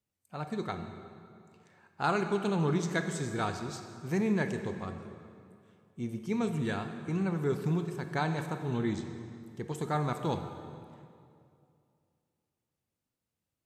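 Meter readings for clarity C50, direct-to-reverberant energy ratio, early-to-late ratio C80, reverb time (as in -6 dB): 7.5 dB, 6.5 dB, 8.5 dB, 2.4 s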